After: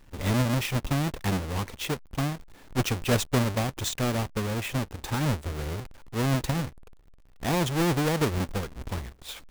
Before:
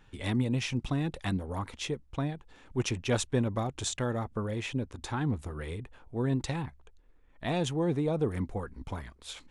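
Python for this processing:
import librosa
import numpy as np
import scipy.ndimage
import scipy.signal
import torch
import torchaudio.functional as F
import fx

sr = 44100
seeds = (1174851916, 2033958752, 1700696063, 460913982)

y = fx.halfwave_hold(x, sr)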